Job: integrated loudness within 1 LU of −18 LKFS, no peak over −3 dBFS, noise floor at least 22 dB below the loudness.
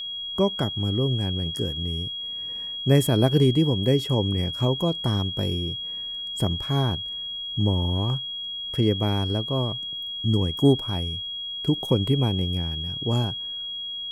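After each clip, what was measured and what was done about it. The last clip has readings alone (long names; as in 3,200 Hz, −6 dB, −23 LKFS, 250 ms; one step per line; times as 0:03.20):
crackle rate 26 per second; interfering tone 3,300 Hz; level of the tone −30 dBFS; integrated loudness −24.5 LKFS; sample peak −5.0 dBFS; target loudness −18.0 LKFS
→ click removal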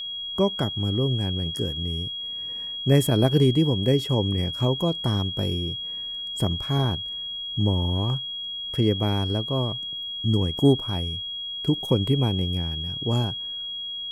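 crackle rate 0.071 per second; interfering tone 3,300 Hz; level of the tone −30 dBFS
→ notch filter 3,300 Hz, Q 30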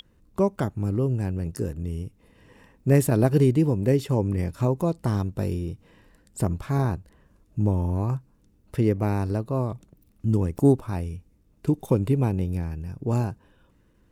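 interfering tone none found; integrated loudness −25.5 LKFS; sample peak −5.5 dBFS; target loudness −18.0 LKFS
→ level +7.5 dB
brickwall limiter −3 dBFS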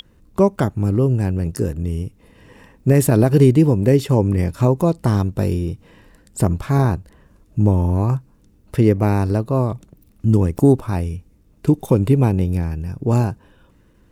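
integrated loudness −18.5 LKFS; sample peak −3.0 dBFS; background noise floor −54 dBFS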